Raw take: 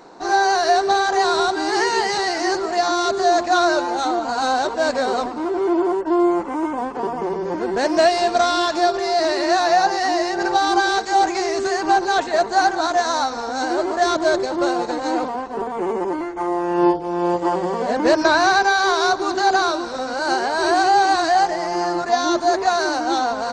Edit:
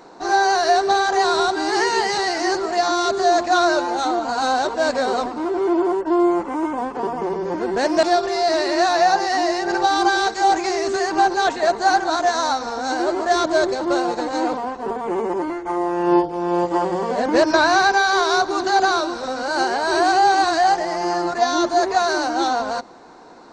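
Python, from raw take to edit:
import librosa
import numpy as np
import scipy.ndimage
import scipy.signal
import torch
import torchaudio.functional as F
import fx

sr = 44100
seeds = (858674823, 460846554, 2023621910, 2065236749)

y = fx.edit(x, sr, fx.cut(start_s=8.03, length_s=0.71), tone=tone)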